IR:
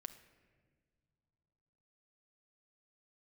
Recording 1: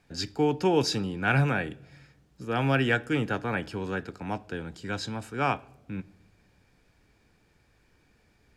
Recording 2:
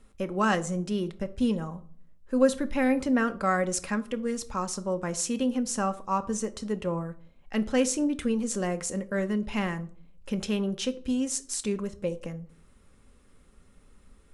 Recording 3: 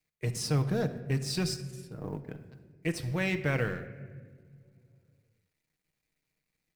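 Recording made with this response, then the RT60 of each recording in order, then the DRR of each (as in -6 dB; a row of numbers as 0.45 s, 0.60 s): 3; no single decay rate, 0.50 s, no single decay rate; 18.5 dB, 8.5 dB, 7.0 dB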